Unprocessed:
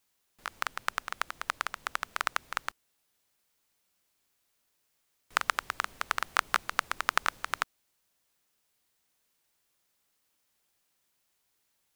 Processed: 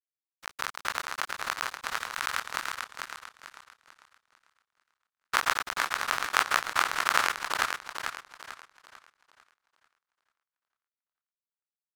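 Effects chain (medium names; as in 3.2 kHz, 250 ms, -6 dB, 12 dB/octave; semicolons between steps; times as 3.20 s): every event in the spectrogram widened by 60 ms; 1.98–2.48 s: high-pass 1 kHz 12 dB/octave; crossover distortion -29 dBFS; vibrato 14 Hz 42 cents; modulated delay 445 ms, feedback 36%, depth 81 cents, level -5 dB; trim -1.5 dB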